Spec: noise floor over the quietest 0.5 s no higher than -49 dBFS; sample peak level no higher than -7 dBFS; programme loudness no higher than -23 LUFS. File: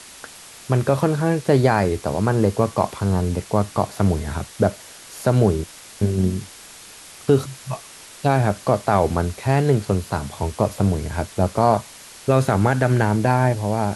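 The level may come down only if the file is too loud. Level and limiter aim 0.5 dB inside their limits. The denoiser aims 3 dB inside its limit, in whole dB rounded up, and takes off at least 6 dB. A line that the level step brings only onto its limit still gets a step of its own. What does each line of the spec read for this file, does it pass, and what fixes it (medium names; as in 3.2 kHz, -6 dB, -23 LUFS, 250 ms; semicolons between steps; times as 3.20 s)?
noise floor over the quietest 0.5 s -42 dBFS: fail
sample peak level -4.5 dBFS: fail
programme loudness -21.0 LUFS: fail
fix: noise reduction 8 dB, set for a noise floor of -42 dBFS; trim -2.5 dB; peak limiter -7.5 dBFS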